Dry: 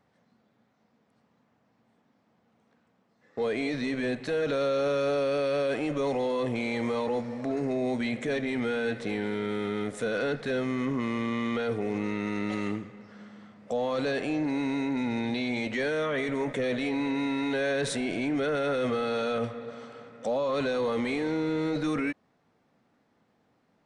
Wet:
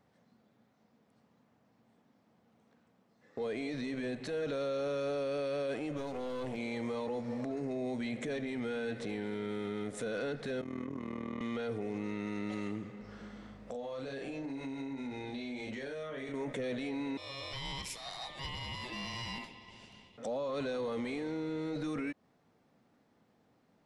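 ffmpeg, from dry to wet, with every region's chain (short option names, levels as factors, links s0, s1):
-filter_complex "[0:a]asettb=1/sr,asplit=3[s0][s1][s2];[s0]atrim=end=5.974[s3];[s1]atrim=start=5.97:end=6.57,asetpts=PTS-STARTPTS,afade=t=in:d=0.004:c=qsin,afade=t=out:st=0.596:d=0.004:c=qsin,bandreject=f=60:t=h:w=6,bandreject=f=120:t=h:w=6,bandreject=f=180:t=h:w=6,bandreject=f=240:t=h:w=6,bandreject=f=300:t=h:w=6,bandreject=f=360:t=h:w=6,bandreject=f=420:t=h:w=6,aeval=exprs='clip(val(0),-1,0.02)':c=same[s4];[s2]atrim=start=6.566[s5];[s3][s4]acrossfade=d=0.004:c1=hsin:c2=qsin[s6];[s6][s5]acrossfade=d=0.004:c1=qsin:c2=hsin,asettb=1/sr,asplit=3[s7][s8][s9];[s7]atrim=end=10.614[s10];[s8]atrim=start=10.61:end=11.41,asetpts=PTS-STARTPTS,afade=t=in:d=0.004:c=qsin,afade=t=out:st=0.796:d=0.004:c=qsin,acrossover=split=270|1900[s11][s12][s13];[s11]acompressor=threshold=0.01:ratio=4[s14];[s12]acompressor=threshold=0.0141:ratio=4[s15];[s13]acompressor=threshold=0.00126:ratio=4[s16];[s14][s15][s16]amix=inputs=3:normalize=0,tremolo=f=40:d=0.857[s17];[s9]atrim=start=11.406[s18];[s10][s17]acrossfade=d=0.004:c1=hsin:c2=qsin[s19];[s19][s18]acrossfade=d=0.004:c1=qsin:c2=hsin,asettb=1/sr,asplit=3[s20][s21][s22];[s20]atrim=end=13.014[s23];[s21]atrim=start=13.01:end=16.34,asetpts=PTS-STARTPTS,afade=t=in:d=0.004:c=qsin,afade=t=out:st=3.326:d=0.004:c=qsin,asplit=2[s24][s25];[s25]adelay=37,volume=0.794[s26];[s24][s26]amix=inputs=2:normalize=0,atrim=end_sample=146853,aeval=exprs='val(0)+0.00141*(sin(2*PI*50*n/s)+sin(2*PI*2*50*n/s)/2+sin(2*PI*3*50*n/s)/3+sin(2*PI*4*50*n/s)/4+sin(2*PI*5*50*n/s)/5)':c=same,acompressor=threshold=0.0141:ratio=8:attack=3.2:release=140:knee=1:detection=peak[s27];[s22]atrim=start=16.336[s28];[s23][s27]acrossfade=d=0.004:c1=hsin:c2=qsin[s29];[s29][s28]acrossfade=d=0.004:c1=qsin:c2=hsin,asettb=1/sr,asplit=3[s30][s31][s32];[s30]atrim=end=17.174[s33];[s31]atrim=start=17.17:end=20.18,asetpts=PTS-STARTPTS,afade=t=in:d=0.004:c=qsin,afade=t=out:st=3.006:d=0.004:c=qsin,highpass=1000,aeval=exprs='val(0)*sin(2*PI*1500*n/s)':c=same[s34];[s32]atrim=start=20.176[s35];[s33][s34]acrossfade=d=0.004:c1=hsin:c2=qsin[s36];[s36][s35]acrossfade=d=0.004:c1=qsin:c2=hsin,equalizer=f=1600:t=o:w=2.2:g=-3,alimiter=level_in=1.88:limit=0.0631:level=0:latency=1:release=147,volume=0.531"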